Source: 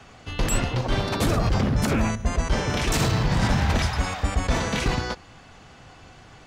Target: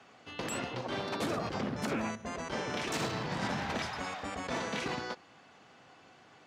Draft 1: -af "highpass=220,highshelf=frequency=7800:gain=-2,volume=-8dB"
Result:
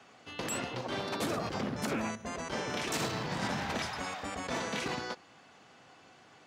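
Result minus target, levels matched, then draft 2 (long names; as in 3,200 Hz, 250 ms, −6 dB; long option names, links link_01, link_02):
8,000 Hz band +3.0 dB
-af "highpass=220,highshelf=frequency=7800:gain=-10,volume=-8dB"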